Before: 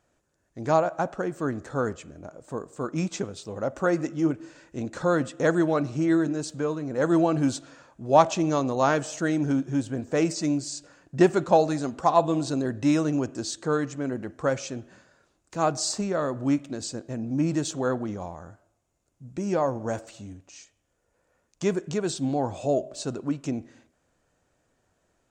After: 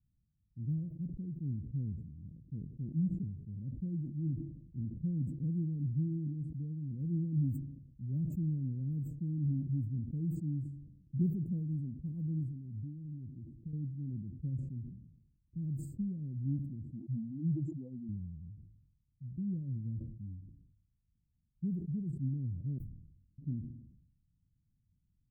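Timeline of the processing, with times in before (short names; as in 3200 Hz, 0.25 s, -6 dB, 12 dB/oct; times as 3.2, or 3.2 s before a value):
12.43–13.73 compressor 5:1, threshold -33 dBFS
16.92–18.09 spectral contrast raised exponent 3.5
22.78–23.38 room tone
whole clip: low-pass opened by the level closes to 390 Hz, open at -21.5 dBFS; inverse Chebyshev band-stop 710–6100 Hz, stop band 70 dB; sustainer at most 62 dB/s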